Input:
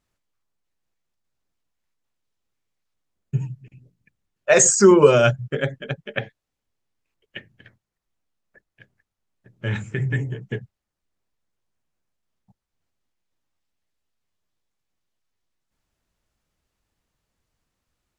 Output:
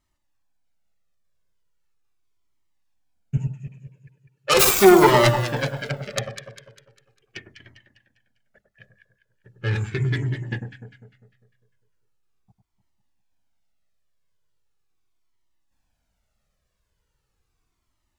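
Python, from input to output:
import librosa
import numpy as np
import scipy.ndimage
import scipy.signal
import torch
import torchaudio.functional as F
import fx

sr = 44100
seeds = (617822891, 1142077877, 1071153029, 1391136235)

y = fx.self_delay(x, sr, depth_ms=0.47)
y = fx.highpass(y, sr, hz=150.0, slope=12, at=(3.37, 4.54))
y = fx.echo_alternate(y, sr, ms=100, hz=1300.0, feedback_pct=66, wet_db=-6.0)
y = fx.comb_cascade(y, sr, direction='falling', hz=0.39)
y = y * librosa.db_to_amplitude(4.5)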